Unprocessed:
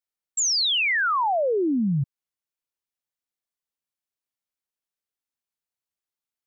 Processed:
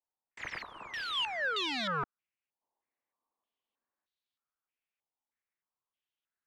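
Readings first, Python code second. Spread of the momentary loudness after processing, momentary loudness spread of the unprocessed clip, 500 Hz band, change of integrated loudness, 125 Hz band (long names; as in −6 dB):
11 LU, 9 LU, −16.5 dB, −12.5 dB, −19.5 dB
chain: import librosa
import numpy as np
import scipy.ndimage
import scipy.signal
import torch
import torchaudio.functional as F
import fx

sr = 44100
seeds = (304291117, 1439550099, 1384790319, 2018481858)

y = (np.mod(10.0 ** (28.5 / 20.0) * x + 1.0, 2.0) - 1.0) / 10.0 ** (28.5 / 20.0)
y = fx.spec_box(y, sr, start_s=2.62, length_s=1.44, low_hz=210.0, high_hz=1200.0, gain_db=10)
y = fx.filter_held_lowpass(y, sr, hz=3.2, low_hz=870.0, high_hz=3800.0)
y = y * 10.0 ** (-4.0 / 20.0)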